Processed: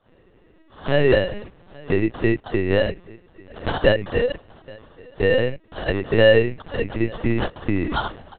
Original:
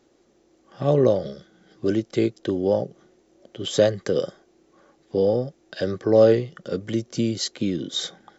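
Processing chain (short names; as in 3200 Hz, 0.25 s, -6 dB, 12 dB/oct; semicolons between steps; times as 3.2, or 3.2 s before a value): in parallel at +2 dB: compressor 5:1, threshold -30 dBFS, peak gain reduction 17.5 dB; on the sum: dispersion lows, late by 71 ms, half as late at 1400 Hz; sample-rate reducer 2300 Hz, jitter 0%; echo 0.83 s -24 dB; LPC vocoder at 8 kHz pitch kept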